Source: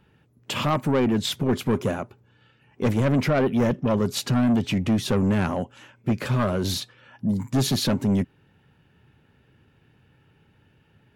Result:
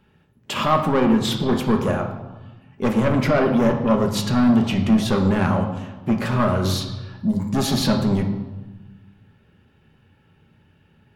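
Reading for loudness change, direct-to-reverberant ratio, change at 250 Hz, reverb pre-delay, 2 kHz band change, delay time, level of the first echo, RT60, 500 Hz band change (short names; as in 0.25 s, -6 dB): +3.5 dB, 3.0 dB, +4.0 dB, 4 ms, +4.0 dB, none, none, 1.2 s, +4.0 dB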